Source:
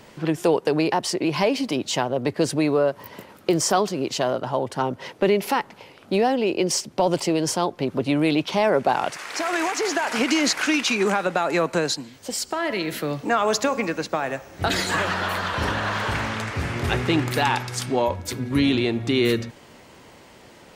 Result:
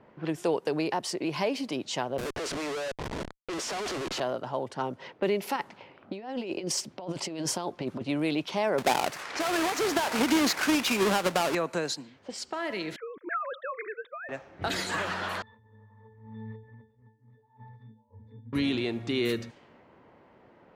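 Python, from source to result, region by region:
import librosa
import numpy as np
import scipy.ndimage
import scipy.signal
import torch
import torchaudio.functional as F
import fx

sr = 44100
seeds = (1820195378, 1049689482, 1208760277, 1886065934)

y = fx.chain(x, sr, fx.highpass(hz=360.0, slope=24),
    fx.schmitt(flips_db=-38.0), at=(2.18, 4.2))
y = fx.chain(y, sr, fx.over_compress(threshold_db=-24.0, ratio=-0.5),
    fx.notch(hz=460.0, q=9.9), at=(5.56, 8.03))
y = fx.chain(y, sr, fx.halfwave_hold(),
    fx.high_shelf(hz=11000.0, db=-6.0), at=(8.78, 11.55))
y = fx.chain(y, sr, fx.sine_speech(),
    fx.fixed_phaser(hz=2800.0, stages=6), at=(12.96, 14.29))
y = fx.chain(y, sr, fx.low_shelf(hz=140.0, db=5.0),
    fx.over_compress(threshold_db=-29.0, ratio=-0.5),
    fx.octave_resonator(note='A', decay_s=0.39), at=(15.42, 18.53))
y = fx.low_shelf(y, sr, hz=66.0, db=-10.5)
y = fx.env_lowpass(y, sr, base_hz=1300.0, full_db=-20.5)
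y = y * librosa.db_to_amplitude(-7.5)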